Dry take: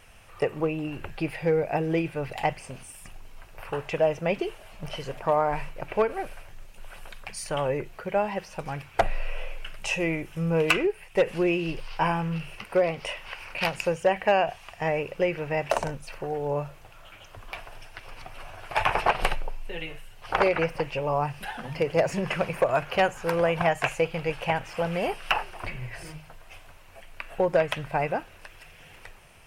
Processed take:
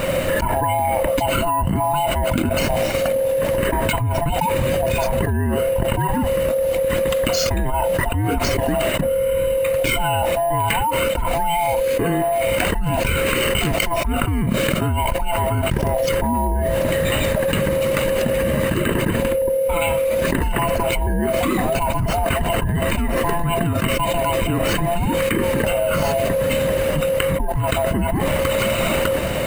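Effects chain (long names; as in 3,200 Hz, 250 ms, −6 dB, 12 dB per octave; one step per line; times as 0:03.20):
neighbouring bands swapped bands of 500 Hz
low-shelf EQ 400 Hz +11.5 dB
bad sample-rate conversion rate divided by 4×, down filtered, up hold
envelope flattener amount 100%
level −12.5 dB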